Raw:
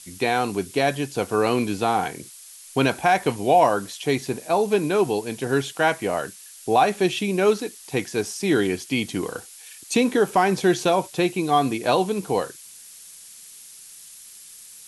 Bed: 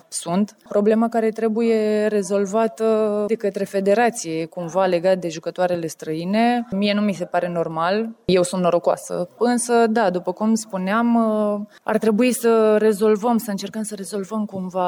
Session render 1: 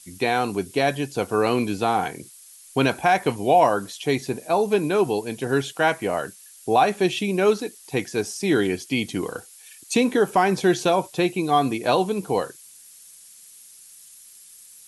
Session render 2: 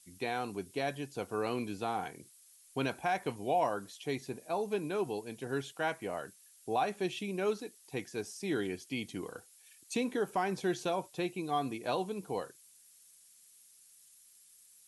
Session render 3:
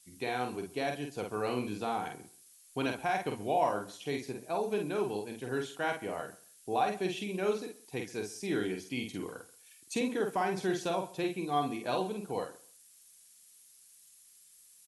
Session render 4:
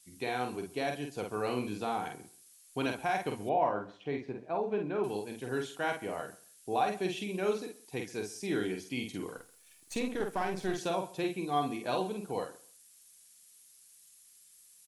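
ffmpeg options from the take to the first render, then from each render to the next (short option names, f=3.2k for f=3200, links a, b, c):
-af "afftdn=nr=6:nf=-45"
-af "volume=-13.5dB"
-filter_complex "[0:a]asplit=2[a][b];[b]adelay=48,volume=-4.5dB[c];[a][c]amix=inputs=2:normalize=0,aecho=1:1:133|266:0.1|0.018"
-filter_complex "[0:a]asettb=1/sr,asplit=3[a][b][c];[a]atrim=end=3.494[d];[b]atrim=start=3.49:end=5.04,asetpts=PTS-STARTPTS,afade=t=in:d=0.004:c=qsin,afade=t=out:st=1.546:d=0.004:c=qsin,lowpass=2.1k[e];[c]atrim=start=5.036[f];[d][e]acrossfade=d=0.004:c1=hsin:c2=qsin[g];[g][f]acrossfade=d=0.004:c1=qsin:c2=hsin,asettb=1/sr,asplit=3[h][i][j];[h]atrim=end=9.374[k];[i]atrim=start=9.37:end=10.78,asetpts=PTS-STARTPTS,afade=t=in:d=0.004:c=qsin,afade=t=out:st=1.406:d=0.004:c=qsin,aeval=exprs='if(lt(val(0),0),0.447*val(0),val(0))':c=same[l];[j]atrim=start=10.776[m];[k][l]acrossfade=d=0.004:c1=hsin:c2=qsin[n];[n][m]acrossfade=d=0.004:c1=qsin:c2=hsin"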